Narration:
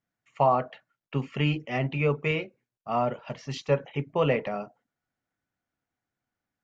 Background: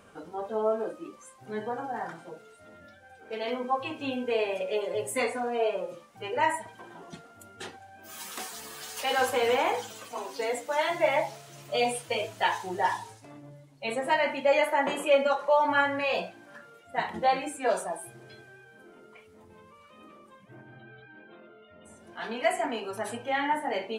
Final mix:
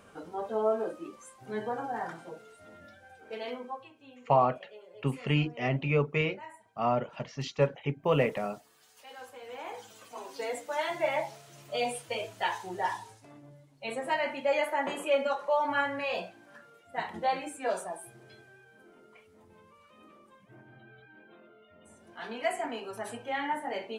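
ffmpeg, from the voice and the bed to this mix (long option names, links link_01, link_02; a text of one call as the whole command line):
ffmpeg -i stem1.wav -i stem2.wav -filter_complex "[0:a]adelay=3900,volume=-1.5dB[link_01];[1:a]volume=16dB,afade=type=out:start_time=3.05:duration=0.86:silence=0.0944061,afade=type=in:start_time=9.47:duration=0.94:silence=0.149624[link_02];[link_01][link_02]amix=inputs=2:normalize=0" out.wav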